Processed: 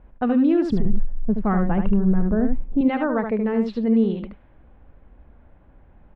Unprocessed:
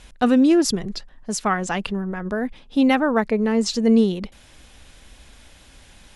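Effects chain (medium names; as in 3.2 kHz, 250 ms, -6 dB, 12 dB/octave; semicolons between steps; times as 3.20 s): level-controlled noise filter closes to 1 kHz, open at -12.5 dBFS; 0.71–2.81 s: tilt EQ -4 dB/octave; peak limiter -10.5 dBFS, peak gain reduction 7 dB; distance through air 480 m; delay 75 ms -6.5 dB; trim -1.5 dB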